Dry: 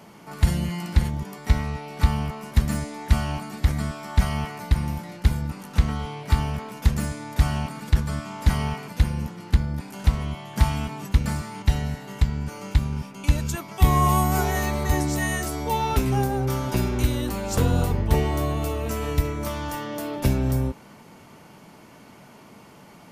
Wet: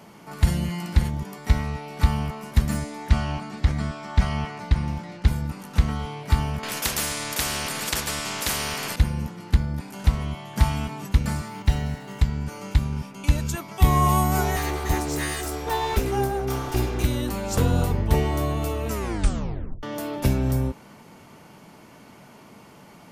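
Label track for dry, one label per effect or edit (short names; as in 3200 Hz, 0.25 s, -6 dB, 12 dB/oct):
3.090000	5.280000	LPF 6200 Hz
6.630000	8.960000	spectral compressor 4:1
11.480000	12.200000	decimation joined by straight lines rate divided by 2×
14.560000	17.060000	minimum comb delay 2.5 ms
18.910000	18.910000	tape stop 0.92 s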